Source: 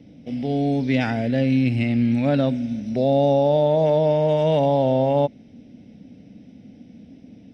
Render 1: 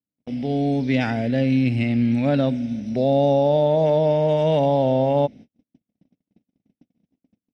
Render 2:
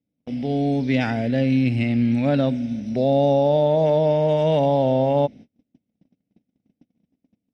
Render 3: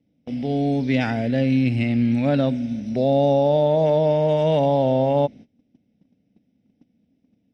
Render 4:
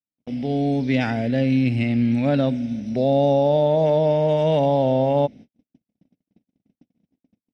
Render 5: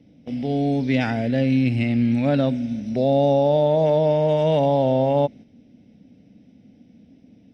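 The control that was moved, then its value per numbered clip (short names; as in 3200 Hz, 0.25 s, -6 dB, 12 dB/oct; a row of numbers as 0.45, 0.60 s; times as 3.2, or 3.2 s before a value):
gate, range: -47, -34, -21, -59, -6 dB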